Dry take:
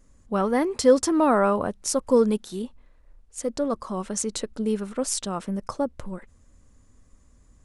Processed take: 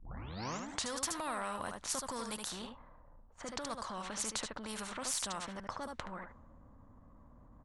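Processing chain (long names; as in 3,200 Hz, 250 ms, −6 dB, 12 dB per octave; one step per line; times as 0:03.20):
turntable start at the beginning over 0.90 s
low-shelf EQ 340 Hz −7 dB
notch filter 5,100 Hz, Q 17
single-tap delay 74 ms −10 dB
harmonic generator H 6 −44 dB, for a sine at −8 dBFS
transient designer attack −6 dB, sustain 0 dB
low-pass that shuts in the quiet parts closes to 650 Hz, open at −25.5 dBFS
graphic EQ with 15 bands 400 Hz −12 dB, 1,000 Hz +6 dB, 2,500 Hz −5 dB
downward compressor 2 to 1, threshold −36 dBFS, peak gain reduction 10.5 dB
every bin compressed towards the loudest bin 2 to 1
level +1 dB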